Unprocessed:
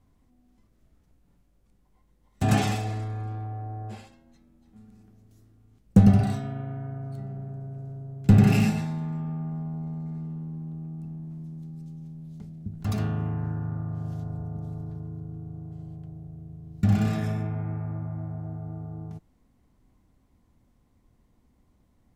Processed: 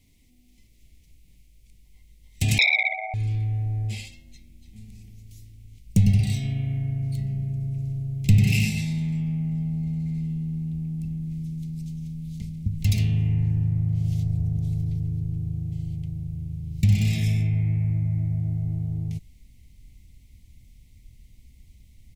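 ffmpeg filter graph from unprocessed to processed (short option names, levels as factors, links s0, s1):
-filter_complex "[0:a]asettb=1/sr,asplit=3[s0][s1][s2];[s0]atrim=end=2.584[s3];[s1]atrim=start=2.58:end=3.14,asetpts=PTS-STARTPTS,afade=t=in:d=0.004:c=qsin,afade=t=out:st=0.556:d=0.004:c=qsin,acontrast=72,asuperpass=centerf=740:order=20:qfactor=2.6,aeval=exprs='0.224*sin(PI/2*7.08*val(0)/0.224)':c=same[s4];[s2]atrim=start=3.136[s5];[s3][s4]acrossfade=d=0.004:c1=hsin:c2=qsin[s6];[s6][s5]acrossfade=d=0.004:c1=qsin:c2=hsin,firequalizer=gain_entry='entry(270,0);entry(1400,-23);entry(2100,13)':delay=0.05:min_phase=1,acompressor=threshold=0.0282:ratio=2,asubboost=boost=5.5:cutoff=120,volume=1.26"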